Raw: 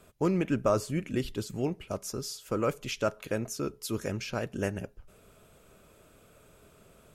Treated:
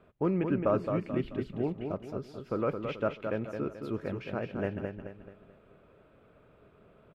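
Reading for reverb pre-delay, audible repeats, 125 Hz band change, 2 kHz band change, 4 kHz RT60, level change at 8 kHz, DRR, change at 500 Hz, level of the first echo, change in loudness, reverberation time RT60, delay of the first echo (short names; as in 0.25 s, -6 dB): none, 4, -1.5 dB, -3.5 dB, none, under -25 dB, none, -0.5 dB, -6.0 dB, -1.0 dB, none, 0.217 s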